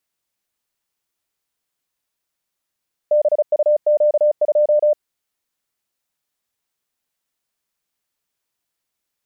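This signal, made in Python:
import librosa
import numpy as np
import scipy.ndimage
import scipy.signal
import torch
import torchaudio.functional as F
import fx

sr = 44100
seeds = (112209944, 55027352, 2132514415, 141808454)

y = fx.morse(sr, text='BUQ2', wpm=35, hz=598.0, level_db=-11.0)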